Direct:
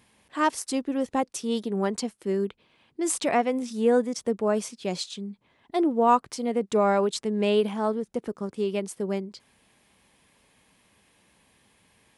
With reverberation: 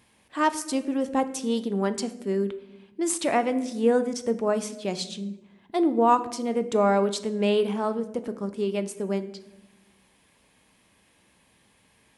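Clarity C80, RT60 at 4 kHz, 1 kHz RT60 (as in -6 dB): 16.0 dB, 0.60 s, 0.80 s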